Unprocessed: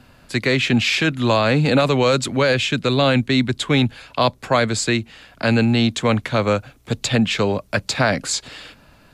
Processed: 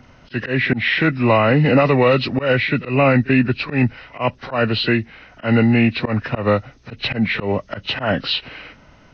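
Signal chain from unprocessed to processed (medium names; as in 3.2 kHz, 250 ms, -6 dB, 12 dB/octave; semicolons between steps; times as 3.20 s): knee-point frequency compression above 1.2 kHz 1.5:1; pre-echo 38 ms -21 dB; slow attack 124 ms; trim +2.5 dB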